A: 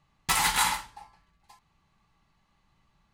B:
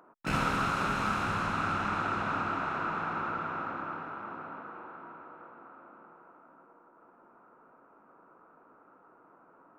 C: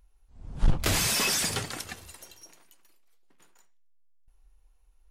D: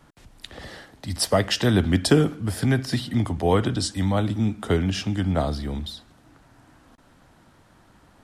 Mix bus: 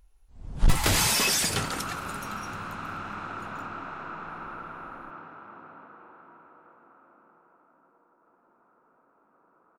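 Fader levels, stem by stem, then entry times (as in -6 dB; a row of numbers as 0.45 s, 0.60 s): -6.5 dB, -5.5 dB, +2.0 dB, mute; 0.40 s, 1.25 s, 0.00 s, mute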